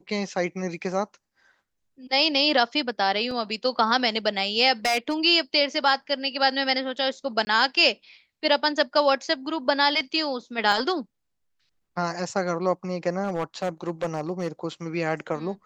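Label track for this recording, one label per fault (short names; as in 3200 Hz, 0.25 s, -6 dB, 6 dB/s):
3.310000	3.310000	gap 2.9 ms
4.850000	5.240000	clipped -18.5 dBFS
7.450000	7.470000	gap 20 ms
10.720000	10.720000	gap 2.2 ms
13.230000	14.480000	clipped -21.5 dBFS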